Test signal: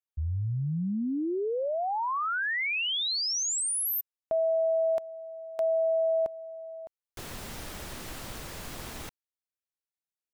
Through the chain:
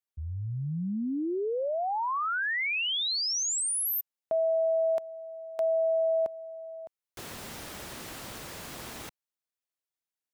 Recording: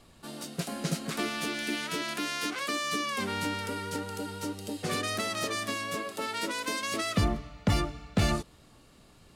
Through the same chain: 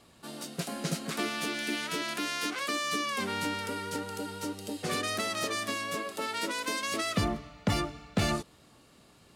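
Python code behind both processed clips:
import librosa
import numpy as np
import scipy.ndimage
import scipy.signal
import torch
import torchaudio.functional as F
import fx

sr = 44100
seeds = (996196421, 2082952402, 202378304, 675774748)

y = fx.highpass(x, sr, hz=130.0, slope=6)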